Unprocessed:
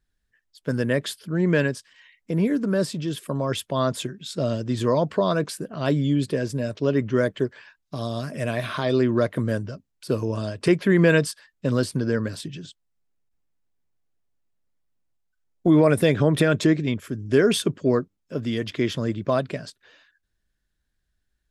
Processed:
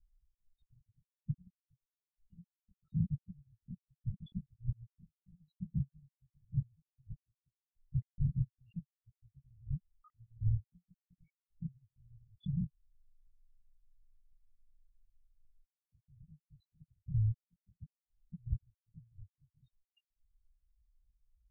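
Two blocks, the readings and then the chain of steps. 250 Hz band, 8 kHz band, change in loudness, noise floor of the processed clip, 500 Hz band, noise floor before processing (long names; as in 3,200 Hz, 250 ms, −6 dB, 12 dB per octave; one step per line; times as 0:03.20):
−24.0 dB, below −40 dB, −16.5 dB, below −85 dBFS, below −40 dB, −76 dBFS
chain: samples in bit-reversed order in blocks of 128 samples
gate with flip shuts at −17 dBFS, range −35 dB
spectral peaks only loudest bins 1
linear-prediction vocoder at 8 kHz whisper
level +12 dB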